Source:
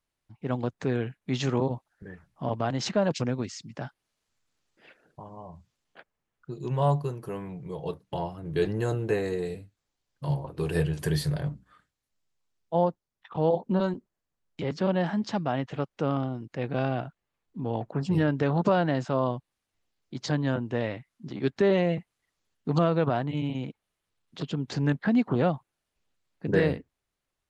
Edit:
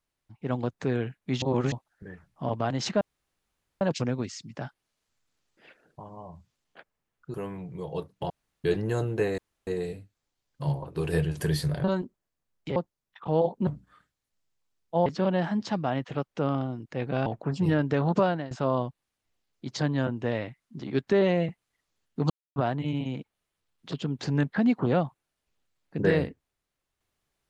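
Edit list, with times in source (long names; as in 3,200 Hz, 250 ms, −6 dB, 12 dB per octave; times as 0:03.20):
0:01.42–0:01.72: reverse
0:03.01: splice in room tone 0.80 s
0:06.54–0:07.25: remove
0:08.21–0:08.55: fill with room tone
0:09.29: splice in room tone 0.29 s
0:11.46–0:12.85: swap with 0:13.76–0:14.68
0:16.88–0:17.75: remove
0:18.71–0:19.00: fade out, to −18 dB
0:22.79–0:23.05: silence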